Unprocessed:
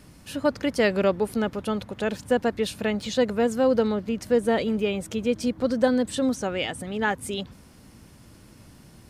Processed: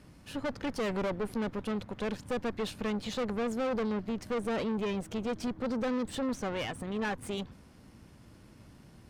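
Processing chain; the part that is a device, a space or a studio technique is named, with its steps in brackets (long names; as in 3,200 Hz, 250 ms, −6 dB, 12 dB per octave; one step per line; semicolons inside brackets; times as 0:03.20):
tube preamp driven hard (tube saturation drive 29 dB, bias 0.75; high-shelf EQ 5,300 Hz −9 dB)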